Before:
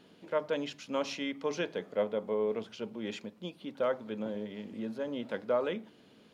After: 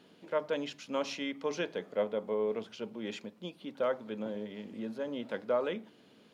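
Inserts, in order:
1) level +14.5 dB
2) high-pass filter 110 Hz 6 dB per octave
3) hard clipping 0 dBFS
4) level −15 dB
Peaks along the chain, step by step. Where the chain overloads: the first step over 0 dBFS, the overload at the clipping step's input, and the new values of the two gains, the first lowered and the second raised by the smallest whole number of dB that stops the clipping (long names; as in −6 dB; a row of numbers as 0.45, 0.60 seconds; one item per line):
−3.0, −3.5, −3.5, −18.5 dBFS
no step passes full scale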